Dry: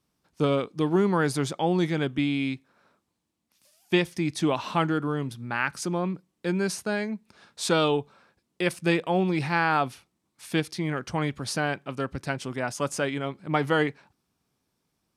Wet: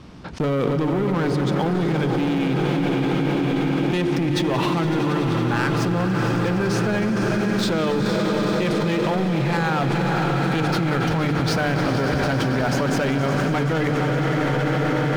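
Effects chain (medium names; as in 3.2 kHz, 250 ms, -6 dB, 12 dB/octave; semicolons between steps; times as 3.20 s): low-pass 3.7 kHz 12 dB/octave; bass shelf 360 Hz +7.5 dB; hum notches 50/100/150/200/250/300/350/400/450 Hz; waveshaping leveller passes 3; on a send: echo that smears into a reverb 493 ms, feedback 75%, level -10 dB; on the sum: peak limiter -16 dBFS, peak gain reduction 11 dB; echo with a slow build-up 93 ms, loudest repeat 5, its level -13 dB; level flattener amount 100%; trim -3.5 dB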